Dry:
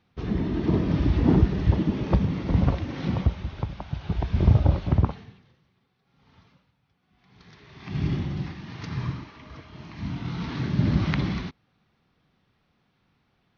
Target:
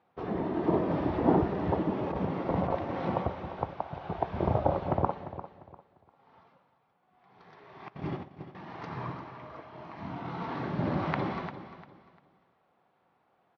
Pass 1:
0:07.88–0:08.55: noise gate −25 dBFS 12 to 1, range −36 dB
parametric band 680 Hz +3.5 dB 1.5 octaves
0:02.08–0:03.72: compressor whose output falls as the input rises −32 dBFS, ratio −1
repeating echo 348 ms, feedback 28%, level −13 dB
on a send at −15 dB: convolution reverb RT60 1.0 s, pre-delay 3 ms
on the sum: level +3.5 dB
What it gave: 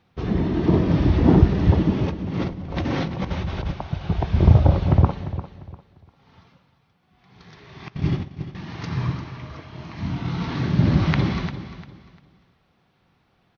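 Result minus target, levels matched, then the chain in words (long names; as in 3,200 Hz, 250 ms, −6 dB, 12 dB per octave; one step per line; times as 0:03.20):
1,000 Hz band −9.5 dB
0:07.88–0:08.55: noise gate −25 dBFS 12 to 1, range −36 dB
resonant band-pass 750 Hz, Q 1.1
parametric band 680 Hz +3.5 dB 1.5 octaves
0:02.08–0:03.72: compressor whose output falls as the input rises −32 dBFS, ratio −1
repeating echo 348 ms, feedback 28%, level −13 dB
on a send at −15 dB: convolution reverb RT60 1.0 s, pre-delay 3 ms
on the sum: level +3.5 dB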